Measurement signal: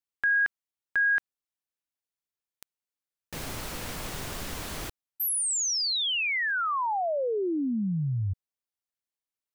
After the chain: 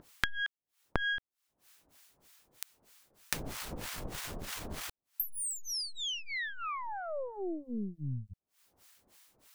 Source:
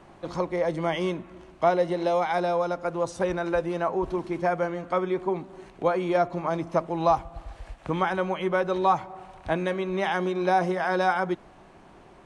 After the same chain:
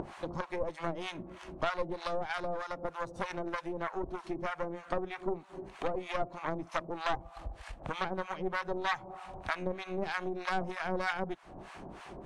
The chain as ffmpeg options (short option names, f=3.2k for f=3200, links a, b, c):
-filter_complex "[0:a]aeval=exprs='0.316*(cos(1*acos(clip(val(0)/0.316,-1,1)))-cos(1*PI/2))+0.112*(cos(4*acos(clip(val(0)/0.316,-1,1)))-cos(4*PI/2))+0.00562*(cos(6*acos(clip(val(0)/0.316,-1,1)))-cos(6*PI/2))+0.00316*(cos(7*acos(clip(val(0)/0.316,-1,1)))-cos(7*PI/2))':c=same,acrossover=split=850[a][b];[a]aeval=exprs='val(0)*(1-1/2+1/2*cos(2*PI*3.2*n/s))':c=same[c];[b]aeval=exprs='val(0)*(1-1/2-1/2*cos(2*PI*3.2*n/s))':c=same[d];[c][d]amix=inputs=2:normalize=0,acompressor=mode=upward:threshold=-28dB:ratio=2.5:attack=74:release=219:knee=2.83:detection=peak,volume=-7.5dB"